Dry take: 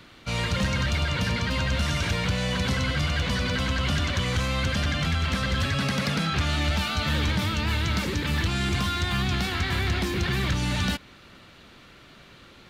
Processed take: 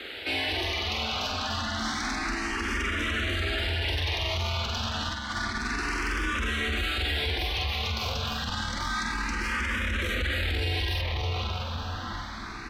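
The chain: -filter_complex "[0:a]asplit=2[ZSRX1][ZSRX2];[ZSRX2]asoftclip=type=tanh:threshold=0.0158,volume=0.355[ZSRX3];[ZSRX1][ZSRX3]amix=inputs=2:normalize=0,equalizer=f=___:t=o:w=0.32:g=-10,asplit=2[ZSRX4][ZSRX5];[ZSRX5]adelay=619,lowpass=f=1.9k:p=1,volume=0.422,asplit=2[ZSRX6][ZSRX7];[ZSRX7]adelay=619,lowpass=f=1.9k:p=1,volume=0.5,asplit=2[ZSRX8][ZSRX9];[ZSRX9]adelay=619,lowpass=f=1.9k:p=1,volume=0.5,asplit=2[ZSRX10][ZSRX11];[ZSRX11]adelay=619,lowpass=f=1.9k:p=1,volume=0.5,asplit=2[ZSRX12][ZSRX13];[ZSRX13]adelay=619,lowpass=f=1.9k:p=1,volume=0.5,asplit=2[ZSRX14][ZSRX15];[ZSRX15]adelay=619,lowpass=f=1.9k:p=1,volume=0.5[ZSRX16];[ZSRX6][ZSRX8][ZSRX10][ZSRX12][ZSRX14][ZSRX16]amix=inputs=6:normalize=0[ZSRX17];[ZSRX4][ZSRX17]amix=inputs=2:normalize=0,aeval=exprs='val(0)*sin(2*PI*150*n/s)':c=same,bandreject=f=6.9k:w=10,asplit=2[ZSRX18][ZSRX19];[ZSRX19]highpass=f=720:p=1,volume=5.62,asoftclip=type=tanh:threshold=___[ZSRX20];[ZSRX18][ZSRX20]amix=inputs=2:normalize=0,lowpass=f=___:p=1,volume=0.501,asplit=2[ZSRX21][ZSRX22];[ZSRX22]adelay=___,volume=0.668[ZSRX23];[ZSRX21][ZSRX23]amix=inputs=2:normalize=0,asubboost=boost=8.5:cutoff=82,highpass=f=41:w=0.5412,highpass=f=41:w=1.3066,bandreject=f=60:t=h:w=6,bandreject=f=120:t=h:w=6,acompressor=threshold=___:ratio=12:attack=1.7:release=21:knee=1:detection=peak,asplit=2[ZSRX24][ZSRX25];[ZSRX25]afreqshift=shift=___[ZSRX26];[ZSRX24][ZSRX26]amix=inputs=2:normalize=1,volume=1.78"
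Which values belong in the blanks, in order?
9k, 0.211, 7.7k, 45, 0.0355, 0.29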